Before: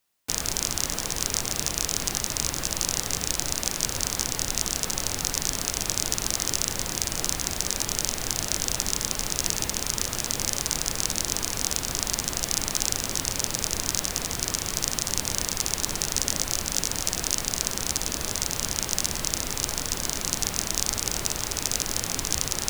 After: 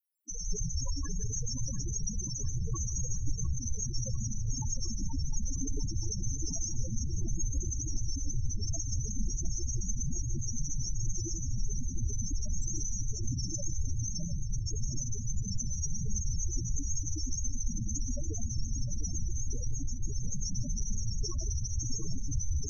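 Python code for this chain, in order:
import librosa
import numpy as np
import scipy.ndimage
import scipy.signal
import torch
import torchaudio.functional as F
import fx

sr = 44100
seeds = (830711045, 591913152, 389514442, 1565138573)

p1 = 10.0 ** (-17.5 / 20.0) * np.tanh(x / 10.0 ** (-17.5 / 20.0))
p2 = x + F.gain(torch.from_numpy(p1), -5.0).numpy()
p3 = fx.high_shelf(p2, sr, hz=3900.0, db=5.0)
p4 = fx.rev_plate(p3, sr, seeds[0], rt60_s=1.4, hf_ratio=0.3, predelay_ms=100, drr_db=-0.5)
p5 = fx.spec_topn(p4, sr, count=4)
p6 = fx.hum_notches(p5, sr, base_hz=50, count=4)
y = p6 + fx.echo_split(p6, sr, split_hz=1800.0, low_ms=703, high_ms=152, feedback_pct=52, wet_db=-11.5, dry=0)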